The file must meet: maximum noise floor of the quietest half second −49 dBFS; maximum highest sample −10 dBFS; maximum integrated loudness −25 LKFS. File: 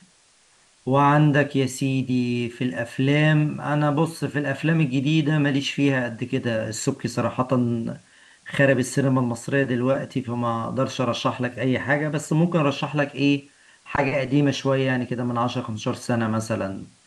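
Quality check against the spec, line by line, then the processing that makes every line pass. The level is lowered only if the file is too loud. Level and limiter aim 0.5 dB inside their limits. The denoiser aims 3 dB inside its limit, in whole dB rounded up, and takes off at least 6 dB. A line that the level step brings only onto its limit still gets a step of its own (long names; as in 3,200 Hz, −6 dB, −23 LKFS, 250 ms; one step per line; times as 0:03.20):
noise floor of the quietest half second −58 dBFS: in spec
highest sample −5.0 dBFS: out of spec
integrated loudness −23.0 LKFS: out of spec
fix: level −2.5 dB
brickwall limiter −10.5 dBFS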